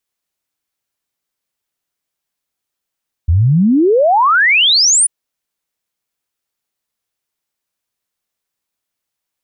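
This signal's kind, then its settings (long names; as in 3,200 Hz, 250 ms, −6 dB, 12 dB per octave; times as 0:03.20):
exponential sine sweep 76 Hz → 10,000 Hz 1.79 s −7.5 dBFS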